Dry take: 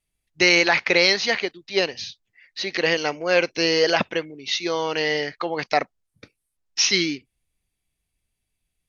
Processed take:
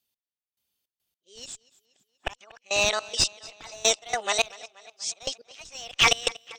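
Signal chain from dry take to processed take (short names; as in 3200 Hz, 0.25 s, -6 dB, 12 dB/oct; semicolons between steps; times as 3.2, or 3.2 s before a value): whole clip reversed; HPF 440 Hz 6 dB/oct; high shelf 2100 Hz +3.5 dB; notch 720 Hz, Q 12; in parallel at -7 dB: Schmitt trigger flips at -14 dBFS; on the sum: step gate "x...xx.x....x.x" 78 bpm -24 dB; on a send: tape echo 0.323 s, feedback 60%, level -20 dB, low-pass 6000 Hz; on the sum: speed mistake 33 rpm record played at 45 rpm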